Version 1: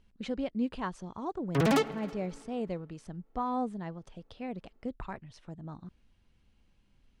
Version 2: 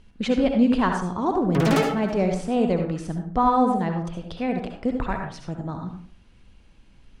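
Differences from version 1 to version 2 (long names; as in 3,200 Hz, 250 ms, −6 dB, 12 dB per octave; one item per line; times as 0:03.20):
speech +9.0 dB
reverb: on, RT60 0.45 s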